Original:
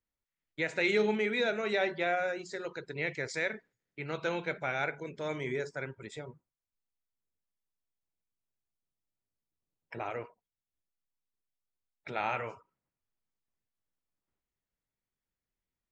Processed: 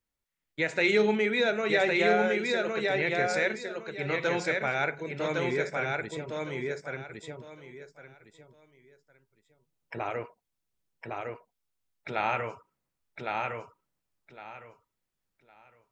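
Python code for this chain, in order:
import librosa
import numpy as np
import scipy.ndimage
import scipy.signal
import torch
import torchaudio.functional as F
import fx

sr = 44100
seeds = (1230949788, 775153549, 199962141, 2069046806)

y = fx.echo_feedback(x, sr, ms=1109, feedback_pct=22, wet_db=-3.0)
y = y * 10.0 ** (4.0 / 20.0)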